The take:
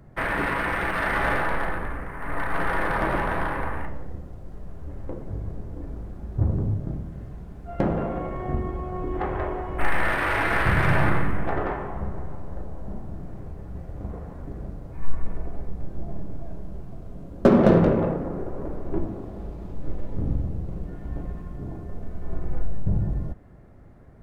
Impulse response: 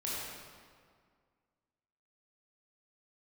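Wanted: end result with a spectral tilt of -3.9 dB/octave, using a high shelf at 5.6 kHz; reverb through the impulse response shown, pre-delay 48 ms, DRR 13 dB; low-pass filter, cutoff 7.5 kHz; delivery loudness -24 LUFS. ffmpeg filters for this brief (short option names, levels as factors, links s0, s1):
-filter_complex "[0:a]lowpass=7500,highshelf=f=5600:g=-8,asplit=2[s0][s1];[1:a]atrim=start_sample=2205,adelay=48[s2];[s1][s2]afir=irnorm=-1:irlink=0,volume=0.141[s3];[s0][s3]amix=inputs=2:normalize=0,volume=1.41"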